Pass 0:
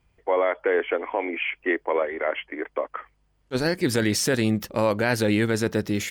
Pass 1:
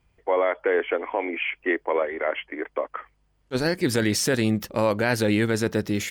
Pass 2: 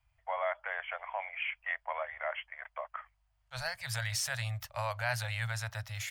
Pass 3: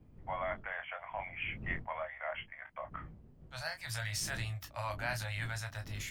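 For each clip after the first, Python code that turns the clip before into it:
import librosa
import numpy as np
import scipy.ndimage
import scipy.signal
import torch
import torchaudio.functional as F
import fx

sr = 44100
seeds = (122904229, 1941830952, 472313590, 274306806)

y1 = x
y2 = scipy.signal.sosfilt(scipy.signal.cheby1(4, 1.0, [120.0, 640.0], 'bandstop', fs=sr, output='sos'), y1)
y2 = fx.peak_eq(y2, sr, hz=180.0, db=8.0, octaves=0.44)
y2 = y2 * librosa.db_to_amplitude(-7.5)
y3 = fx.dmg_wind(y2, sr, seeds[0], corner_hz=150.0, level_db=-47.0)
y3 = fx.room_early_taps(y3, sr, ms=(19, 32), db=(-7.5, -11.0))
y3 = y3 * librosa.db_to_amplitude(-4.0)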